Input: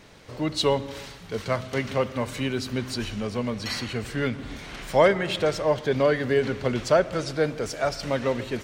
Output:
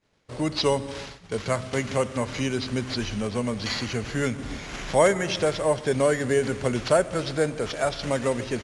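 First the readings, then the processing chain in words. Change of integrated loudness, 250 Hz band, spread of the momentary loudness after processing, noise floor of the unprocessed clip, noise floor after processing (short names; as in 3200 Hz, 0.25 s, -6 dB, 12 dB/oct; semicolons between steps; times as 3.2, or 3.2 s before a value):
0.0 dB, +0.5 dB, 8 LU, -43 dBFS, -46 dBFS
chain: expander -36 dBFS; in parallel at +1.5 dB: compressor, threshold -34 dBFS, peak gain reduction 19 dB; on the sum: sample-and-hold 5×; downsampling 22050 Hz; gain -2 dB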